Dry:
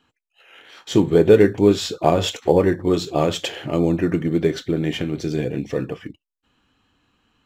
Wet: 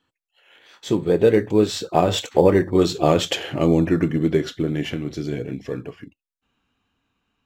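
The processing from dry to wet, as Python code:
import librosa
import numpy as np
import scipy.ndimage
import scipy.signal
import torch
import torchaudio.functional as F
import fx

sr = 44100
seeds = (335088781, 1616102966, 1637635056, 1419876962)

y = fx.doppler_pass(x, sr, speed_mps=18, closest_m=21.0, pass_at_s=3.21)
y = y * librosa.db_to_amplitude(2.5)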